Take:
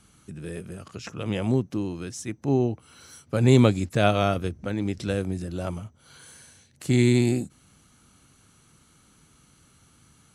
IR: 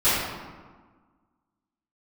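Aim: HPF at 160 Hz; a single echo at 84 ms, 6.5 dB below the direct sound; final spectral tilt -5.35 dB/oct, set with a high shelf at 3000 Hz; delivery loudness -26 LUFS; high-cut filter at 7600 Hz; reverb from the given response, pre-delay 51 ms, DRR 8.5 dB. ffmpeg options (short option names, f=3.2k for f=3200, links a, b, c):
-filter_complex "[0:a]highpass=160,lowpass=7.6k,highshelf=f=3k:g=5,aecho=1:1:84:0.473,asplit=2[a][b];[1:a]atrim=start_sample=2205,adelay=51[c];[b][c]afir=irnorm=-1:irlink=0,volume=-26.5dB[d];[a][d]amix=inputs=2:normalize=0,volume=-1.5dB"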